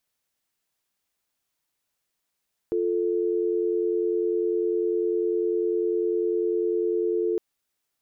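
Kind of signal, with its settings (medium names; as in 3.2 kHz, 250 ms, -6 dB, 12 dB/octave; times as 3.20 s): call progress tone dial tone, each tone -24.5 dBFS 4.66 s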